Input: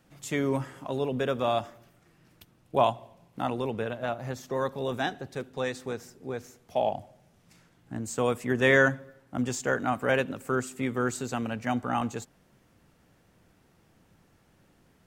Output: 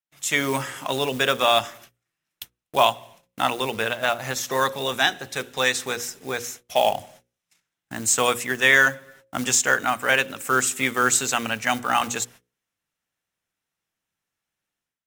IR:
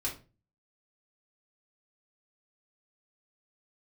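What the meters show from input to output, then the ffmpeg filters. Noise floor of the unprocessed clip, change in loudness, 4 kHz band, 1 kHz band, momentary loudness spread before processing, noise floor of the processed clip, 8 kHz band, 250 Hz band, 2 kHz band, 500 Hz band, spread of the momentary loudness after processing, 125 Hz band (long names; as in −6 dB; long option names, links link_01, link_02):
−64 dBFS, +7.5 dB, +15.5 dB, +7.5 dB, 13 LU, −85 dBFS, +17.5 dB, −0.5 dB, +9.5 dB, +2.5 dB, 11 LU, −2.5 dB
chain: -af "bandreject=frequency=4600:width=11,acrusher=bits=8:mode=log:mix=0:aa=0.000001,agate=range=-32dB:threshold=-54dB:ratio=16:detection=peak,tiltshelf=frequency=970:gain=-9.5,bandreject=frequency=60:width_type=h:width=6,bandreject=frequency=120:width_type=h:width=6,bandreject=frequency=180:width_type=h:width=6,bandreject=frequency=240:width_type=h:width=6,bandreject=frequency=300:width_type=h:width=6,bandreject=frequency=360:width_type=h:width=6,bandreject=frequency=420:width_type=h:width=6,bandreject=frequency=480:width_type=h:width=6,bandreject=frequency=540:width_type=h:width=6,dynaudnorm=framelen=110:gausssize=5:maxgain=14dB,volume=-3dB"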